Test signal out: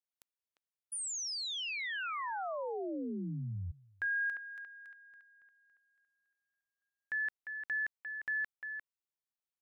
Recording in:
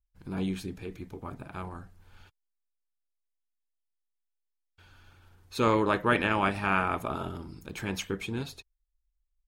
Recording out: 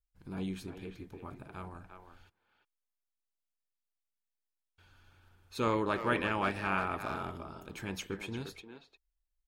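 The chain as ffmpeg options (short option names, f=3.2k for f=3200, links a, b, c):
-filter_complex "[0:a]asplit=2[a][b];[b]adelay=350,highpass=300,lowpass=3.4k,asoftclip=type=hard:threshold=-20dB,volume=-7dB[c];[a][c]amix=inputs=2:normalize=0,volume=-6dB"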